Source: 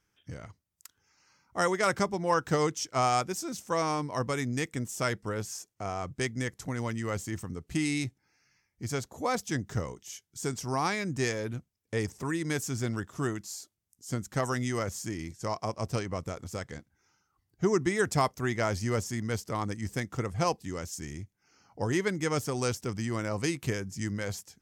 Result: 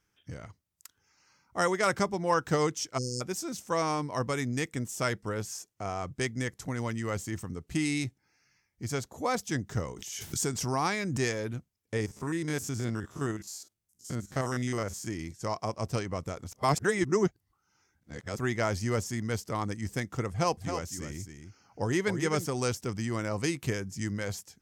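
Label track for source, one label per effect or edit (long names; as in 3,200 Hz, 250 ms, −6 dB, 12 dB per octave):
2.980000	3.210000	time-frequency box erased 530–4,200 Hz
9.810000	11.210000	background raised ahead of every attack at most 33 dB per second
11.960000	15.070000	spectrum averaged block by block every 50 ms
16.520000	18.380000	reverse
20.300000	22.460000	single-tap delay 269 ms −8 dB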